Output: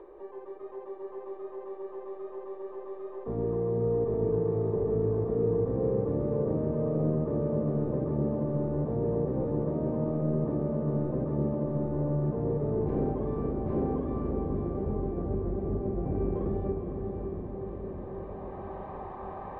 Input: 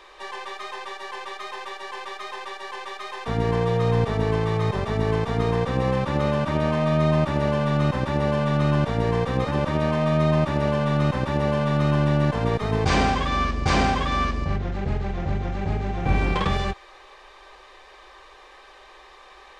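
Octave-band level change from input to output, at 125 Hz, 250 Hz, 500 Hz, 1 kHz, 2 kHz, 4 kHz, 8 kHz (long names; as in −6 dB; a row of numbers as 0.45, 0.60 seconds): −8.0 dB, −5.0 dB, −3.5 dB, −15.5 dB, below −25 dB, below −40 dB, below −35 dB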